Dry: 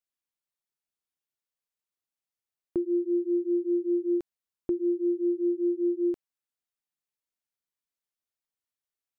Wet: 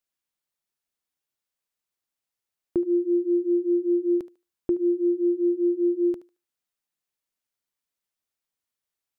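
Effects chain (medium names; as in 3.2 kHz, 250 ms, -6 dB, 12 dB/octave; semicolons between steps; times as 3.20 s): thinning echo 74 ms, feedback 24%, high-pass 440 Hz, level -14 dB; trim +4 dB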